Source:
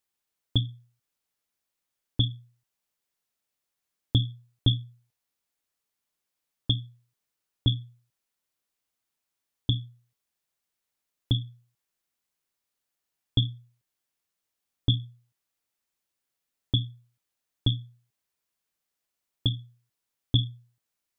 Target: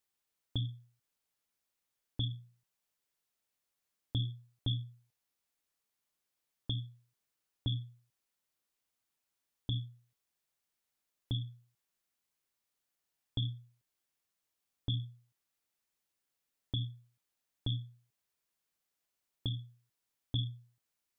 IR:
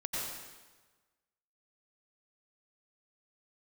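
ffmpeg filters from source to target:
-filter_complex "[0:a]asettb=1/sr,asplit=3[a][b][c];[a]atrim=end=2.304[d];[b]atrim=start=2.3:end=4.3,asetpts=PTS-STARTPTS,afade=t=in:d=0.004:c=qsin,afade=t=out:st=1.996:d=0.004:c=qsin,bandreject=f=177.2:t=h:w=4,bandreject=f=354.4:t=h:w=4[e];[c]atrim=start=4.296[f];[d][e]acrossfade=d=0.004:c1=hsin:c2=qsin[g];[g][f]acrossfade=d=0.004:c1=qsin:c2=hsin,alimiter=limit=-22.5dB:level=0:latency=1:release=82,volume=-2dB"

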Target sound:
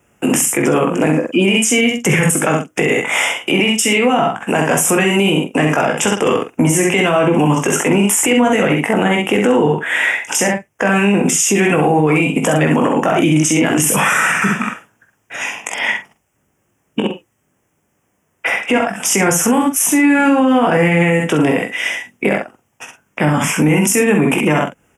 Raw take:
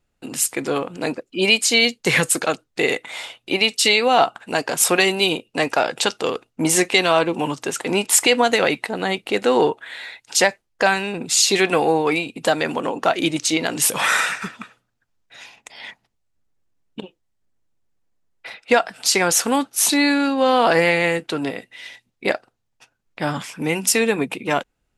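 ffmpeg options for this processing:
-filter_complex "[0:a]acrossover=split=230[a][b];[a]highpass=110[c];[b]acompressor=threshold=-29dB:ratio=6[d];[c][d]amix=inputs=2:normalize=0,asuperstop=centerf=4200:order=4:qfactor=1.5,asplit=2[e][f];[f]adelay=46,volume=-10.5dB[g];[e][g]amix=inputs=2:normalize=0,asplit=2[h][i];[i]aecho=0:1:20|65:0.473|0.562[j];[h][j]amix=inputs=2:normalize=0,alimiter=level_in=22.5dB:limit=-1dB:release=50:level=0:latency=1,volume=-4dB"

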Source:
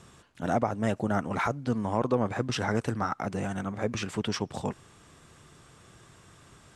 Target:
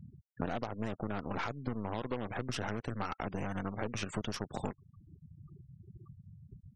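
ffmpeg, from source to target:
-af "aeval=exprs='0.266*(cos(1*acos(clip(val(0)/0.266,-1,1)))-cos(1*PI/2))+0.0335*(cos(6*acos(clip(val(0)/0.266,-1,1)))-cos(6*PI/2))+0.0531*(cos(8*acos(clip(val(0)/0.266,-1,1)))-cos(8*PI/2))':c=same,afftfilt=real='re*gte(hypot(re,im),0.00891)':imag='im*gte(hypot(re,im),0.00891)':win_size=1024:overlap=0.75,acompressor=threshold=-38dB:ratio=16,volume=6.5dB"

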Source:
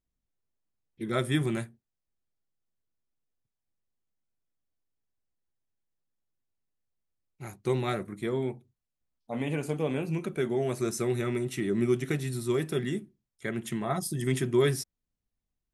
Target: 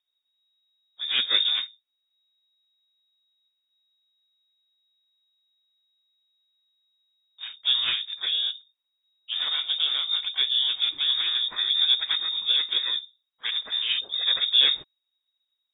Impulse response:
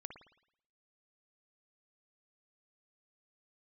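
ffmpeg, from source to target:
-filter_complex "[0:a]asplit=4[a][b][c][d];[b]asetrate=29433,aresample=44100,atempo=1.49831,volume=-5dB[e];[c]asetrate=52444,aresample=44100,atempo=0.840896,volume=-10dB[f];[d]asetrate=58866,aresample=44100,atempo=0.749154,volume=-11dB[g];[a][e][f][g]amix=inputs=4:normalize=0,lowpass=f=3.2k:t=q:w=0.5098,lowpass=f=3.2k:t=q:w=0.6013,lowpass=f=3.2k:t=q:w=0.9,lowpass=f=3.2k:t=q:w=2.563,afreqshift=-3800,volume=2dB"

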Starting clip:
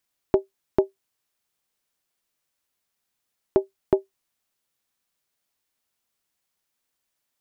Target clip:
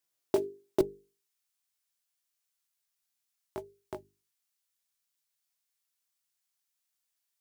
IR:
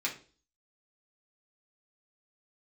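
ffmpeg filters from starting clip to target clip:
-af "highpass=f=67:w=0.5412,highpass=f=67:w=1.3066,bass=f=250:g=-3,treble=f=4k:g=5,flanger=delay=15.5:depth=4.8:speed=1.6,asetnsamples=n=441:p=0,asendcmd='0.81 equalizer g -13',equalizer=f=360:t=o:w=2:g=4,acrusher=bits=5:mode=log:mix=0:aa=0.000001,bandreject=f=50:t=h:w=6,bandreject=f=100:t=h:w=6,bandreject=f=150:t=h:w=6,bandreject=f=200:t=h:w=6,bandreject=f=250:t=h:w=6,bandreject=f=300:t=h:w=6,bandreject=f=350:t=h:w=6,bandreject=f=400:t=h:w=6,bandreject=f=450:t=h:w=6,volume=-4dB"

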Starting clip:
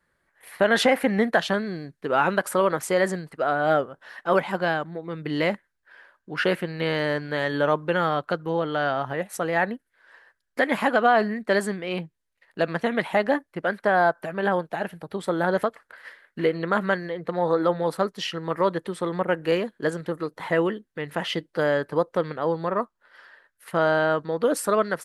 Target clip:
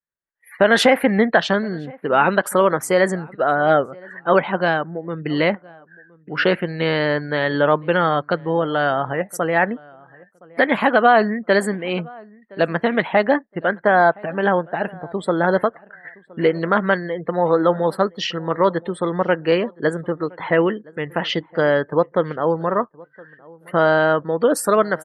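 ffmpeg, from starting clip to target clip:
-filter_complex "[0:a]afftdn=nr=32:nf=-43,asplit=2[a][b];[b]adelay=1017,lowpass=f=1.4k:p=1,volume=-23.5dB,asplit=2[c][d];[d]adelay=1017,lowpass=f=1.4k:p=1,volume=0.22[e];[a][c][e]amix=inputs=3:normalize=0,volume=5.5dB"

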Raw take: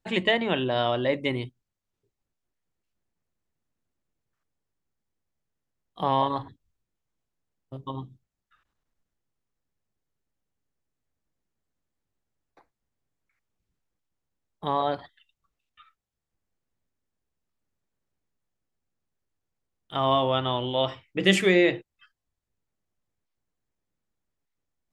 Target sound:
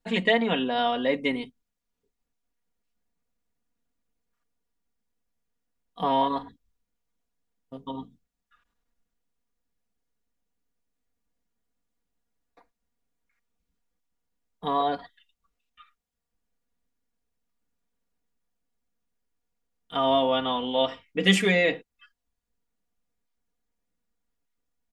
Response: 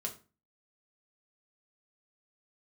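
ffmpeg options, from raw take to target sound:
-af "aecho=1:1:4.2:0.92,volume=-2dB"

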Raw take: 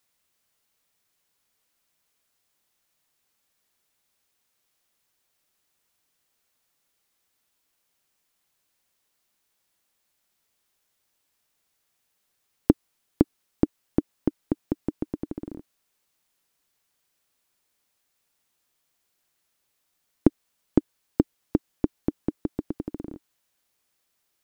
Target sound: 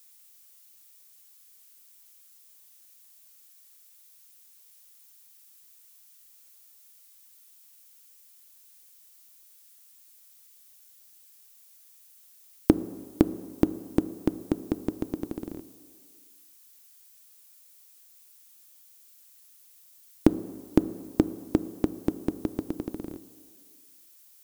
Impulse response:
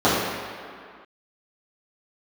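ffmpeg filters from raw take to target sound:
-filter_complex "[0:a]crystalizer=i=6.5:c=0,asplit=2[a][b];[1:a]atrim=start_sample=2205[c];[b][c]afir=irnorm=-1:irlink=0,volume=-37dB[d];[a][d]amix=inputs=2:normalize=0,volume=-1dB"

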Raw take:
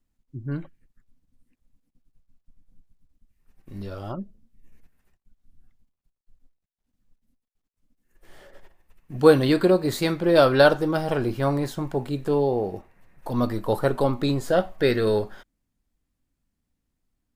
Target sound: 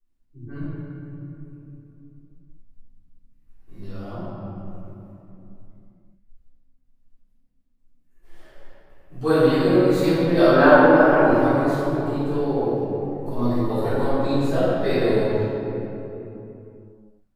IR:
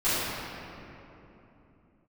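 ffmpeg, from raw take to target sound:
-filter_complex "[0:a]asettb=1/sr,asplit=3[a][b][c];[a]atrim=end=10.474[d];[b]atrim=start=10.47:end=11.22,asetpts=PTS-STARTPTS,afade=t=in:d=0.004:c=qsin,afade=t=out:st=0.746:d=0.004:c=qsin,equalizer=f=125:t=o:w=1:g=-10,equalizer=f=250:t=o:w=1:g=9,equalizer=f=1k:t=o:w=1:g=11,equalizer=f=2k:t=o:w=1:g=6,equalizer=f=4k:t=o:w=1:g=-8,equalizer=f=8k:t=o:w=1:g=-10[e];[c]atrim=start=11.216[f];[d][e]acrossfade=d=0.004:c1=hsin:c2=qsin[g];[g][f]acrossfade=d=0.004:c1=qsin:c2=hsin[h];[1:a]atrim=start_sample=2205[i];[h][i]afir=irnorm=-1:irlink=0,volume=-14.5dB"

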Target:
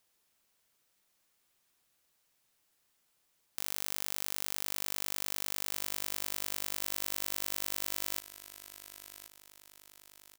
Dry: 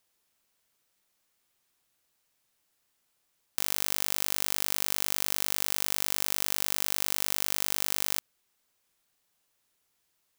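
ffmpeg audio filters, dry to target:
-af "alimiter=limit=-9dB:level=0:latency=1,aecho=1:1:1077|2154|3231|4308:0.211|0.093|0.0409|0.018"

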